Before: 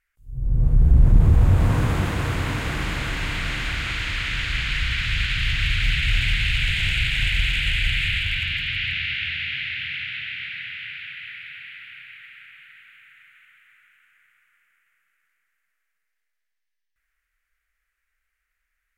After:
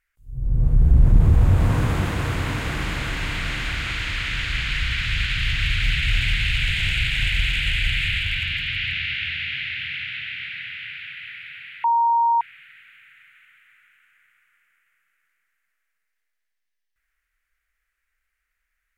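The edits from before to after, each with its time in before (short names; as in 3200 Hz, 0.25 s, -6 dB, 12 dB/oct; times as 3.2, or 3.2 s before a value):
11.84–12.41 bleep 932 Hz -15 dBFS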